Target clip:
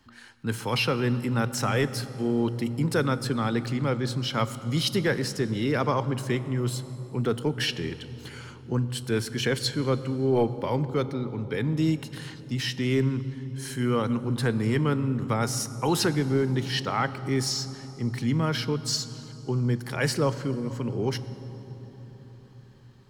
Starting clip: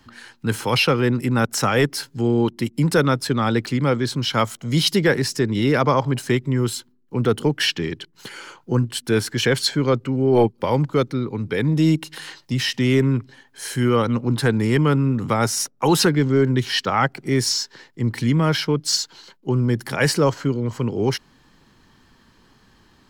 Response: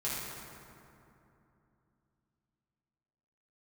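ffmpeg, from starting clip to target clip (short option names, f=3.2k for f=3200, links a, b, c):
-filter_complex "[0:a]asplit=2[a][b];[1:a]atrim=start_sample=2205,asetrate=26019,aresample=44100,lowshelf=f=150:g=8[c];[b][c]afir=irnorm=-1:irlink=0,volume=-21dB[d];[a][d]amix=inputs=2:normalize=0,volume=-8dB"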